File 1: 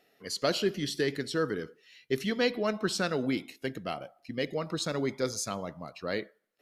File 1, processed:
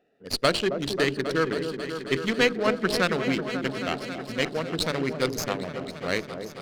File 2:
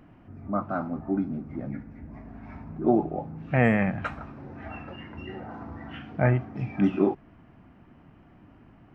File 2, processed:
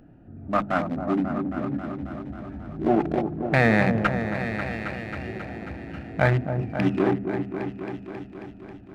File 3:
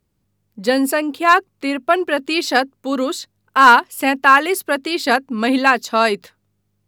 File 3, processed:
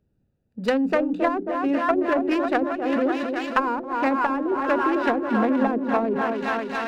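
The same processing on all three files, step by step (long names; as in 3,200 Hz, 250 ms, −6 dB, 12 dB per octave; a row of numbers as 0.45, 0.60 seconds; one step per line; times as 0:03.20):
adaptive Wiener filter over 41 samples
in parallel at +0.5 dB: compressor whose output falls as the input rises −23 dBFS, ratio −1
on the sum: soft clipping −2.5 dBFS
tilt shelving filter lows −6 dB, about 1,100 Hz
mains-hum notches 50/100/150/200/250/300/350/400 Hz
on a send: echo whose low-pass opens from repeat to repeat 270 ms, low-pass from 750 Hz, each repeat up 1 octave, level −6 dB
on the sum: treble cut that deepens with the level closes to 470 Hz, closed at −11 dBFS
high-shelf EQ 8,500 Hz −10.5 dB
windowed peak hold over 3 samples
normalise the peak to −6 dBFS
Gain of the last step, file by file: +2.5, +2.0, −2.0 decibels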